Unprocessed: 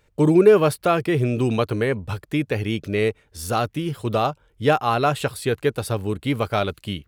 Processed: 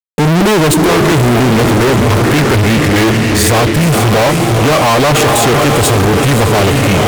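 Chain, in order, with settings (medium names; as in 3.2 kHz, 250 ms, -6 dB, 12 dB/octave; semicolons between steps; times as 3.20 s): echo that smears into a reverb 497 ms, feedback 50%, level -9.5 dB; formant shift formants -3 st; fuzz box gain 41 dB, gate -43 dBFS; trim +5 dB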